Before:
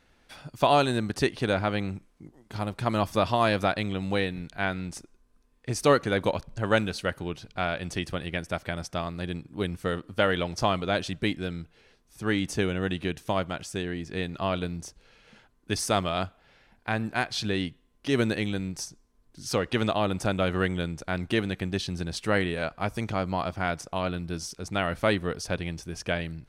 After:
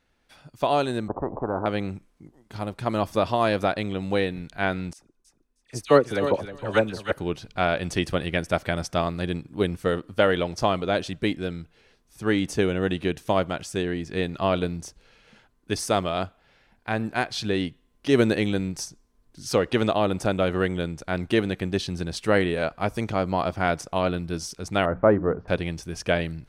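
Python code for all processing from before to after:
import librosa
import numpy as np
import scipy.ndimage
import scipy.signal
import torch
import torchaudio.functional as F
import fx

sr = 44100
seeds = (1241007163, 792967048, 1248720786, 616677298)

y = fx.chain(x, sr, fx.steep_lowpass(hz=940.0, slope=48),
    fx.spectral_comp(ratio=4.0), at=(1.08, 1.66))
y = fx.chain(y, sr, fx.dispersion(late='lows', ms=56.0, hz=1400.0),
    fx.echo_feedback(ms=312, feedback_pct=23, wet_db=-7.5),
    fx.upward_expand(threshold_db=-40.0, expansion=1.5), at=(4.93, 7.12))
y = fx.chain(y, sr, fx.lowpass(hz=1400.0, slope=24),
    fx.hum_notches(base_hz=60, count=5), at=(24.85, 25.48))
y = fx.dynamic_eq(y, sr, hz=440.0, q=0.74, threshold_db=-35.0, ratio=4.0, max_db=5)
y = fx.rider(y, sr, range_db=10, speed_s=2.0)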